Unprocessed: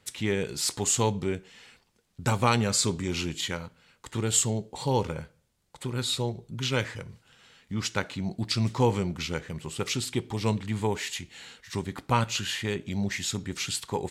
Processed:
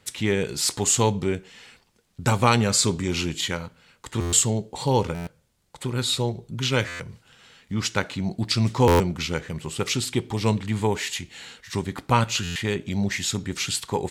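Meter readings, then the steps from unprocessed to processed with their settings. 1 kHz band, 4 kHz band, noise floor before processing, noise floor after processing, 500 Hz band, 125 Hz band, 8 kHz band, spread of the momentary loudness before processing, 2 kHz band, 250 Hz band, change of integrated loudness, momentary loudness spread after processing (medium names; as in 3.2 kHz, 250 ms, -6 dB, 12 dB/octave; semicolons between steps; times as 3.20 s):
+5.0 dB, +4.5 dB, -69 dBFS, -65 dBFS, +5.0 dB, +4.5 dB, +4.5 dB, 12 LU, +4.5 dB, +4.5 dB, +4.5 dB, 13 LU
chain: buffer glitch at 4.20/5.14/6.87/8.87/12.43 s, samples 512, times 10; trim +4.5 dB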